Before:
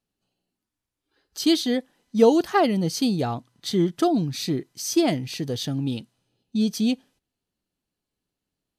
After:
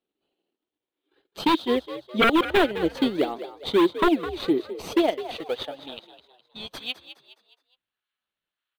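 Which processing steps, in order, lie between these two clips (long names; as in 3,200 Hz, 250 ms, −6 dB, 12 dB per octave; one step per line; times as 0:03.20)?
high-pass filter sweep 350 Hz → 1,400 Hz, 0:04.46–0:07.36
transient designer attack +2 dB, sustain −11 dB
in parallel at −5 dB: sample-and-hold swept by an LFO 15×, swing 160% 1.7 Hz
on the sum: wave folding −8 dBFS
high shelf with overshoot 4,400 Hz −7.5 dB, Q 3
on a send: echo with shifted repeats 208 ms, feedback 42%, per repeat +65 Hz, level −13 dB
on the sum: level −5 dB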